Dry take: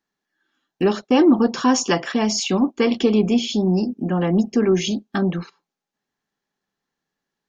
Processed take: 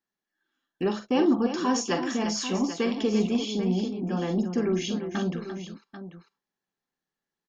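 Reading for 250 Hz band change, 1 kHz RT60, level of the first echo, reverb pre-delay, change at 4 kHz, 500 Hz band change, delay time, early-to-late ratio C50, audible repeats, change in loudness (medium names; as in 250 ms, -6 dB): -7.5 dB, no reverb, -10.0 dB, no reverb, -7.5 dB, -7.5 dB, 43 ms, no reverb, 3, -7.5 dB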